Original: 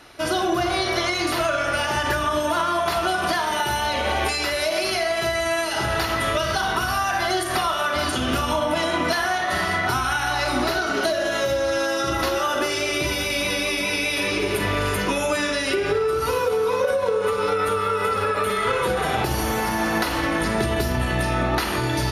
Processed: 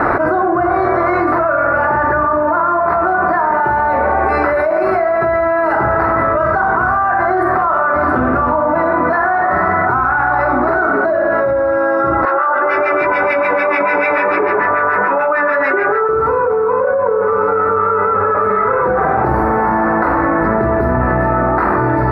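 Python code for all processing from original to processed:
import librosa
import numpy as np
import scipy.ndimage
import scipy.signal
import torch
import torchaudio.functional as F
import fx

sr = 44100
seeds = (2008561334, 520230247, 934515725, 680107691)

y = fx.chain(x, sr, fx.filter_lfo_bandpass(shape='sine', hz=6.8, low_hz=850.0, high_hz=2900.0, q=0.97),
    fx.doubler(ms=19.0, db=-13), at=(12.25, 16.09))
y = scipy.signal.sosfilt(scipy.signal.cheby2(4, 40, 2900.0, 'lowpass', fs=sr, output='sos'), y)
y = fx.tilt_eq(y, sr, slope=2.0)
y = fx.env_flatten(y, sr, amount_pct=100)
y = y * librosa.db_to_amplitude(6.5)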